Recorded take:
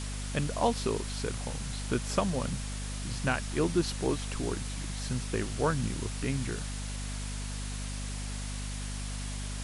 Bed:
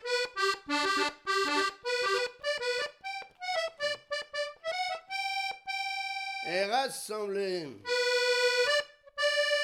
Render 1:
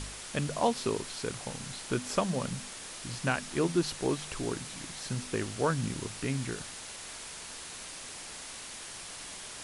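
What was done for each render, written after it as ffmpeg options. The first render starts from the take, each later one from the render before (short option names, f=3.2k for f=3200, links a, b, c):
-af "bandreject=f=50:t=h:w=4,bandreject=f=100:t=h:w=4,bandreject=f=150:t=h:w=4,bandreject=f=200:t=h:w=4,bandreject=f=250:t=h:w=4"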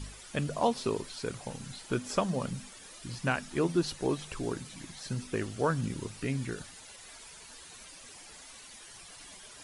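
-af "afftdn=nr=11:nf=-44"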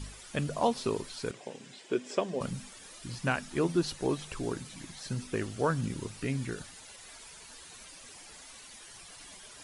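-filter_complex "[0:a]asettb=1/sr,asplit=3[a][b][c];[a]atrim=end=1.314[d];[b]atrim=start=1.31:end=2.41,asetpts=PTS-STARTPTS,afade=t=in:d=0.004:c=qsin,afade=t=out:st=1.096:d=0.004:c=qsin,highpass=290,equalizer=f=390:t=q:w=4:g=7,equalizer=f=860:t=q:w=4:g=-5,equalizer=f=1.3k:t=q:w=4:g=-9,equalizer=f=4.3k:t=q:w=4:g=-7,equalizer=f=6.2k:t=q:w=4:g=-6,lowpass=f=7.4k:w=0.5412,lowpass=f=7.4k:w=1.3066[e];[c]atrim=start=2.406[f];[d][e]acrossfade=d=0.004:c1=hsin:c2=qsin[g];[g][f]acrossfade=d=0.004:c1=qsin:c2=hsin"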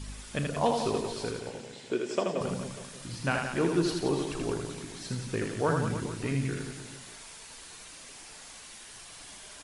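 -filter_complex "[0:a]asplit=2[a][b];[b]adelay=36,volume=-13dB[c];[a][c]amix=inputs=2:normalize=0,asplit=2[d][e];[e]aecho=0:1:80|176|291.2|429.4|595.3:0.631|0.398|0.251|0.158|0.1[f];[d][f]amix=inputs=2:normalize=0"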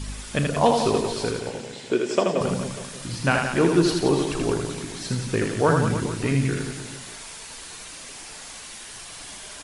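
-af "volume=8dB"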